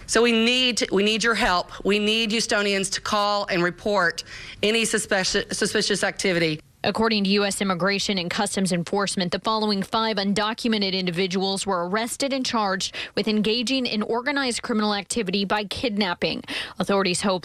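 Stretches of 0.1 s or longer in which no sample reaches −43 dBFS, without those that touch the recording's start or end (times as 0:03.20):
0:06.60–0:06.84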